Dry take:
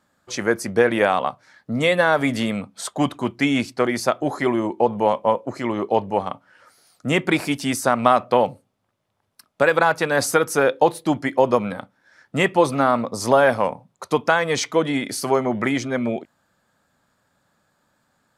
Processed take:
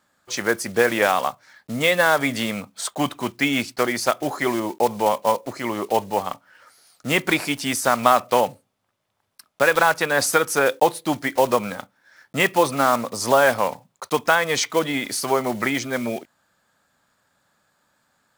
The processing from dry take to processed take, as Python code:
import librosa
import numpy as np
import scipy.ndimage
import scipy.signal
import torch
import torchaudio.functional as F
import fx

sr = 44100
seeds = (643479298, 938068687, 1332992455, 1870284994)

y = fx.block_float(x, sr, bits=5)
y = fx.tilt_shelf(y, sr, db=-3.5, hz=660.0)
y = y * librosa.db_to_amplitude(-1.0)